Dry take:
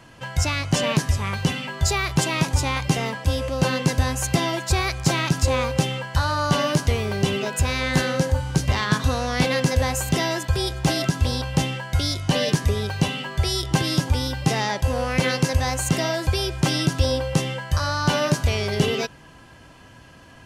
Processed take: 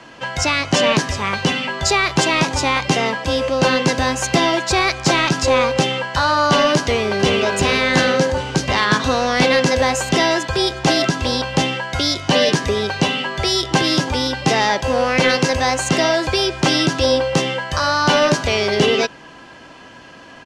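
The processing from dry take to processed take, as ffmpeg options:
-filter_complex "[0:a]asplit=2[a][b];[b]afade=t=in:st=6.81:d=0.01,afade=t=out:st=7.4:d=0.01,aecho=0:1:380|760|1140|1520|1900|2280:0.595662|0.297831|0.148916|0.0744578|0.0372289|0.0186144[c];[a][c]amix=inputs=2:normalize=0,acrossover=split=200 7300:gain=0.112 1 0.0891[d][e][f];[d][e][f]amix=inputs=3:normalize=0,acontrast=84,lowshelf=f=69:g=7.5,volume=1.5dB"

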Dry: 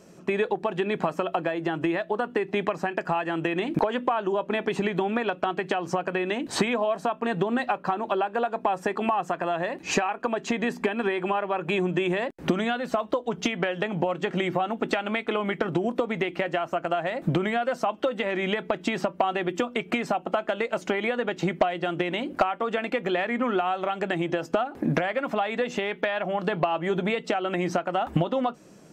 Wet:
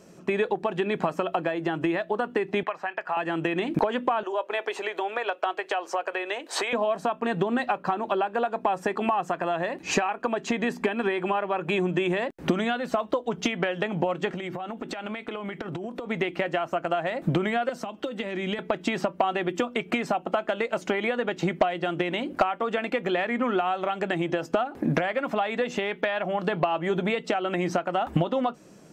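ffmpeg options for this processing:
-filter_complex "[0:a]asettb=1/sr,asplit=3[a][b][c];[a]atrim=end=2.634[d];[b]atrim=start=2.63:end=3.17,asetpts=PTS-STARTPTS,afade=t=in:d=0.004:c=qsin,afade=t=out:st=0.536:d=0.004:c=qsin,acrossover=split=590 3600:gain=0.1 1 0.178[e][f][g];[e][f][g]amix=inputs=3:normalize=0[h];[c]atrim=start=3.166[i];[d][h]acrossfade=d=0.004:c1=hsin:c2=qsin[j];[j][i]acrossfade=d=0.004:c1=qsin:c2=hsin,asettb=1/sr,asplit=3[k][l][m];[k]atrim=end=4.234[n];[l]atrim=start=4.23:end=6.73,asetpts=PTS-STARTPTS,afade=t=in:d=0.004:c=qsin,afade=t=out:st=2.496:d=0.004:c=qsin,highpass=f=440:w=0.5412,highpass=f=440:w=1.3066[o];[m]atrim=start=6.726[p];[n][o]acrossfade=d=0.004:c1=hsin:c2=qsin[q];[q][p]acrossfade=d=0.004:c1=qsin:c2=hsin,asettb=1/sr,asplit=3[r][s][t];[r]atrim=end=14.284[u];[s]atrim=start=14.28:end=16.06,asetpts=PTS-STARTPTS,afade=t=in:d=0.004:c=qsin,afade=t=out:st=1.776:d=0.004:c=qsin,acompressor=threshold=-29dB:ratio=12:attack=3.2:release=140:knee=1:detection=peak[v];[t]atrim=start=16.056[w];[u][v]acrossfade=d=0.004:c1=hsin:c2=qsin[x];[x][w]acrossfade=d=0.004:c1=qsin:c2=hsin,asettb=1/sr,asplit=3[y][z][aa];[y]atrim=end=17.694[ab];[z]atrim=start=17.69:end=18.59,asetpts=PTS-STARTPTS,afade=t=in:d=0.004:c=qsin,afade=t=out:st=0.896:d=0.004:c=qsin,acrossover=split=360|3000[ac][ad][ae];[ad]acompressor=threshold=-34dB:ratio=6:attack=3.2:release=140:knee=2.83:detection=peak[af];[ac][af][ae]amix=inputs=3:normalize=0[ag];[aa]atrim=start=18.586[ah];[ab][ag]acrossfade=d=0.004:c1=hsin:c2=qsin[ai];[ai][ah]acrossfade=d=0.004:c1=qsin:c2=hsin"

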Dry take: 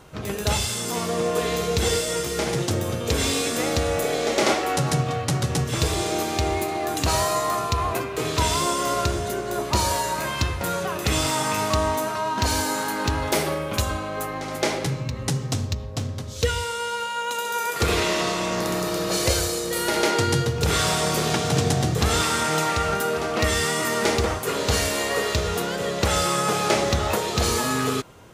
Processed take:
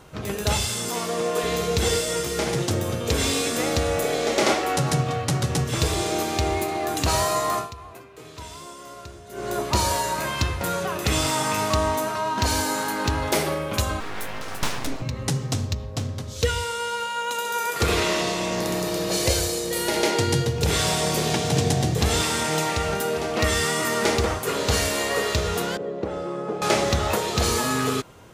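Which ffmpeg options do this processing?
-filter_complex "[0:a]asettb=1/sr,asplit=3[a][b][c];[a]atrim=end=0.894[d];[b]atrim=start=0.89:end=1.44,asetpts=PTS-STARTPTS,afade=t=in:d=0.004:c=qsin,afade=t=out:st=0.546:d=0.004:c=qsin,highpass=f=250:p=1[e];[c]atrim=start=1.436[f];[d][e]acrossfade=d=0.004:c1=hsin:c2=qsin[g];[g][f]acrossfade=d=0.004:c1=qsin:c2=hsin,asettb=1/sr,asplit=3[h][i][j];[h]atrim=end=14.004[k];[i]atrim=start=14:end=15.02,asetpts=PTS-STARTPTS,afade=t=in:d=0.004:c=qsin,afade=t=out:st=1.016:d=0.004:c=qsin,aeval=exprs='abs(val(0))':c=same[l];[j]atrim=start=15.016[m];[k][l]acrossfade=d=0.004:c1=hsin:c2=qsin[n];[n][m]acrossfade=d=0.004:c1=qsin:c2=hsin,asettb=1/sr,asplit=3[o][p][q];[o]atrim=end=18.194[r];[p]atrim=start=18.19:end=23.38,asetpts=PTS-STARTPTS,afade=t=in:d=0.004:c=qsin,afade=t=out:st=5.186:d=0.004:c=qsin,equalizer=f=1.3k:w=3.1:g=-7[s];[q]atrim=start=23.376[t];[r][s]acrossfade=d=0.004:c1=hsin:c2=qsin[u];[u][t]acrossfade=d=0.004:c1=qsin:c2=hsin,asettb=1/sr,asplit=3[v][w][x];[v]atrim=end=25.774[y];[w]atrim=start=25.77:end=26.62,asetpts=PTS-STARTPTS,afade=t=in:d=0.004:c=qsin,afade=t=out:st=0.846:d=0.004:c=qsin,bandpass=f=350:t=q:w=1.3[z];[x]atrim=start=26.616[aa];[y][z]acrossfade=d=0.004:c1=hsin:c2=qsin[ab];[ab][aa]acrossfade=d=0.004:c1=qsin:c2=hsin,asplit=3[ac][ad][ae];[ac]atrim=end=7.76,asetpts=PTS-STARTPTS,afade=t=out:st=7.58:d=0.18:c=qua:silence=0.141254[af];[ad]atrim=start=7.76:end=9.26,asetpts=PTS-STARTPTS,volume=-17dB[ag];[ae]atrim=start=9.26,asetpts=PTS-STARTPTS,afade=t=in:d=0.18:c=qua:silence=0.141254[ah];[af][ag][ah]concat=n=3:v=0:a=1"

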